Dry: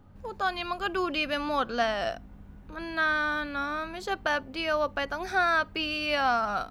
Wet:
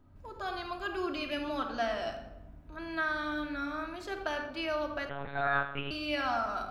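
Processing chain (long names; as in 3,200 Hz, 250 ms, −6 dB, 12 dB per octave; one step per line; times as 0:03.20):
rectangular room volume 3,700 cubic metres, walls furnished, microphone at 2.9 metres
0:05.09–0:05.91: one-pitch LPC vocoder at 8 kHz 140 Hz
level −8.5 dB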